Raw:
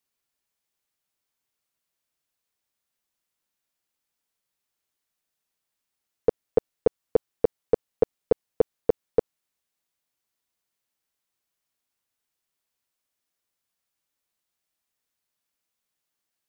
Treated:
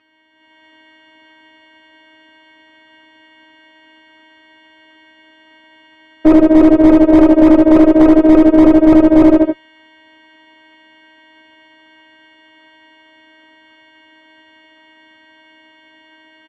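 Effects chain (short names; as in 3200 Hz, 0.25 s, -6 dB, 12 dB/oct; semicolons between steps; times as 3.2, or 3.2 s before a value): frequency quantiser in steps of 2 st; feedback echo 77 ms, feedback 37%, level -8.5 dB; robotiser 316 Hz; speaker cabinet 110–2300 Hz, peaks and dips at 110 Hz +5 dB, 290 Hz +7 dB, 720 Hz -4 dB; notch 510 Hz, Q 12; notch comb 180 Hz; tube stage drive 41 dB, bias 0.2; AGC gain up to 11.5 dB; maximiser +34.5 dB; slew limiter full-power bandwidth 340 Hz; gain -1 dB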